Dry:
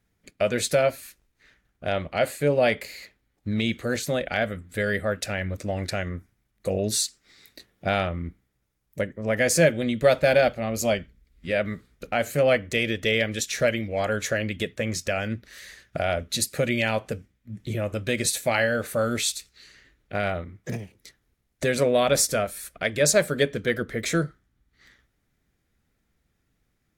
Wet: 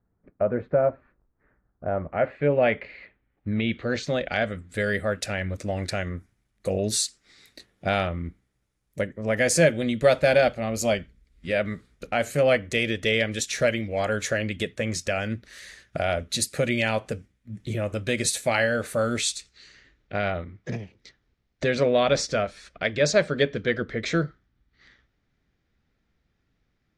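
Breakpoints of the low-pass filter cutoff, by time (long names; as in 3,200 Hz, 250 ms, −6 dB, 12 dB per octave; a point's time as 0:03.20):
low-pass filter 24 dB per octave
0:01.96 1,300 Hz
0:02.44 2,700 Hz
0:03.57 2,700 Hz
0:03.97 5,400 Hz
0:04.86 11,000 Hz
0:18.97 11,000 Hz
0:20.22 5,500 Hz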